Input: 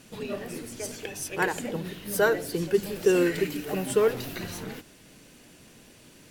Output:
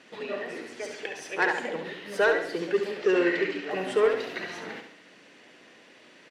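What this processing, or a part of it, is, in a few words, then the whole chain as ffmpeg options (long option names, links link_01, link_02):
intercom: -filter_complex "[0:a]highpass=370,lowpass=3700,equalizer=frequency=1900:width_type=o:width=0.25:gain=7,asoftclip=type=tanh:threshold=-16.5dB,asettb=1/sr,asplit=3[link_01][link_02][link_03];[link_01]atrim=end=2.914[link_04];[link_02]atrim=start=2.91:end=3.71,asetpts=PTS-STARTPTS,afade=type=in:duration=0.004:curve=qsin,afade=type=out:start_time=0.796:duration=0.004:curve=qsin,lowpass=6000[link_05];[link_03]atrim=start=3.706[link_06];[link_04][link_05]acrossfade=duration=0.004:curve1=hsin:curve2=qsin[link_07];[link_07][link_06]acrossfade=duration=0.004:curve1=qsin:curve2=hsin,aecho=1:1:69|138|207|276|345:0.447|0.197|0.0865|0.0381|0.0167,volume=2dB"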